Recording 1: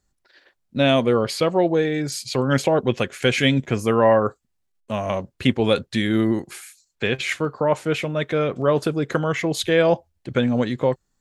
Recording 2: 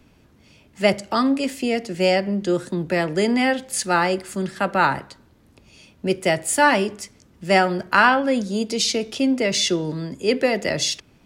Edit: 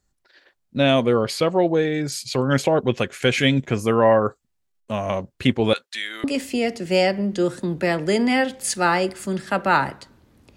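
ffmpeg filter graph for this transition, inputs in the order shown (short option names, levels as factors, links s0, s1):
-filter_complex "[0:a]asettb=1/sr,asplit=3[s0][s1][s2];[s0]atrim=end=5.734[s3];[s1]atrim=start=5.73:end=6.24,asetpts=PTS-STARTPTS,afade=t=in:d=0.004:c=qsin,afade=t=out:st=0.506:d=0.004:c=qsin,highpass=1200[s4];[s2]atrim=start=6.236[s5];[s3][s4]acrossfade=d=0.004:c1=hsin:c2=qsin[s6];[s6][s5]acrossfade=d=0.004:c1=qsin:c2=hsin,apad=whole_dur=10.56,atrim=end=10.56,atrim=end=6.242[s7];[1:a]atrim=start=1.328:end=5.65[s8];[s7][s8]acrossfade=d=0.004:c1=hsin:c2=hsin"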